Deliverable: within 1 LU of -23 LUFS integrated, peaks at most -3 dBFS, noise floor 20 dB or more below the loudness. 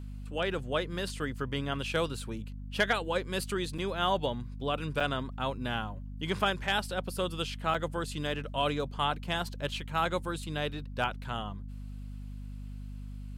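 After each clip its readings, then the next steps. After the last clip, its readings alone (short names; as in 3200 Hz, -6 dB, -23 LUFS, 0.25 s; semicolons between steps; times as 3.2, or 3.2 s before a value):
dropouts 3; longest dropout 4.7 ms; hum 50 Hz; harmonics up to 250 Hz; hum level -38 dBFS; loudness -33.0 LUFS; peak -15.5 dBFS; loudness target -23.0 LUFS
-> interpolate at 3.78/5/7.74, 4.7 ms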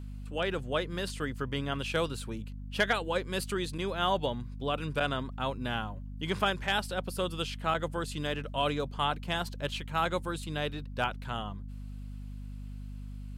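dropouts 0; hum 50 Hz; harmonics up to 250 Hz; hum level -38 dBFS
-> notches 50/100/150/200/250 Hz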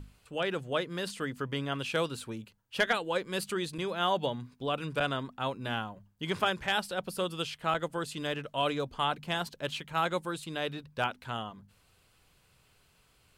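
hum none; loudness -33.0 LUFS; peak -16.0 dBFS; loudness target -23.0 LUFS
-> gain +10 dB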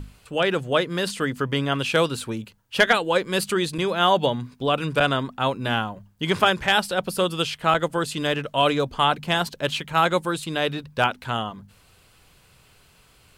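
loudness -23.0 LUFS; peak -6.0 dBFS; noise floor -57 dBFS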